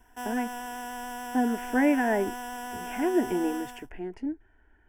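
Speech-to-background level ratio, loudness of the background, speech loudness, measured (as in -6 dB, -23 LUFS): 8.5 dB, -37.5 LUFS, -29.0 LUFS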